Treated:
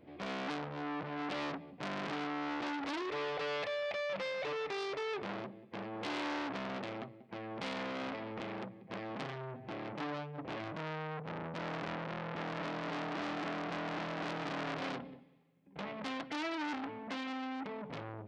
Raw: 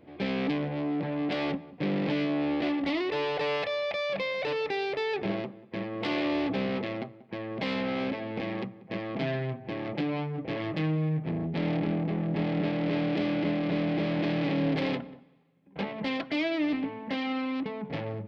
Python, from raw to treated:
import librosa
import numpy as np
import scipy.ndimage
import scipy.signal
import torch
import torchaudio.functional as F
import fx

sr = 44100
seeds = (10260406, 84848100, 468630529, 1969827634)

y = fx.transformer_sat(x, sr, knee_hz=2100.0)
y = F.gain(torch.from_numpy(y), -4.0).numpy()